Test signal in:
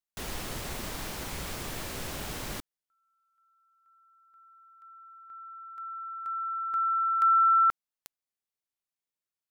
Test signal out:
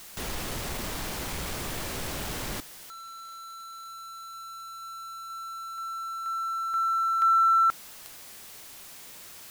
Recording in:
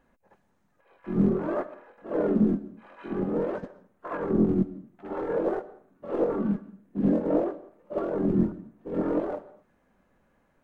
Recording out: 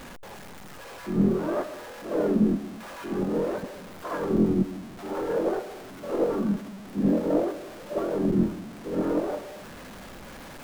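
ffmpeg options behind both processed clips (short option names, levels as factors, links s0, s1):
-af "aeval=exprs='val(0)+0.5*0.0141*sgn(val(0))':c=same"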